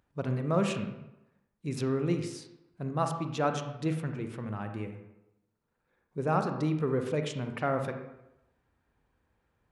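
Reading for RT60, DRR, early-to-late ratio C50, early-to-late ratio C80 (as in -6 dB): 0.90 s, 6.0 dB, 7.0 dB, 9.0 dB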